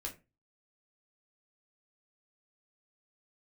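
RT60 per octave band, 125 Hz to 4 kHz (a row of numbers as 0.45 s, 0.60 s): 0.45 s, 0.35 s, 0.30 s, 0.25 s, 0.25 s, 0.15 s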